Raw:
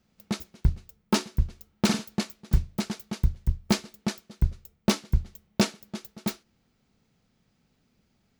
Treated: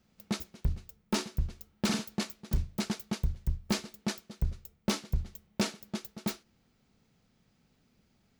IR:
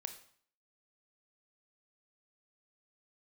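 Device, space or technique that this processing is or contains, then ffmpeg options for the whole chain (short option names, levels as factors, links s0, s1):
clipper into limiter: -af "asoftclip=type=hard:threshold=0.178,alimiter=limit=0.0891:level=0:latency=1:release=22"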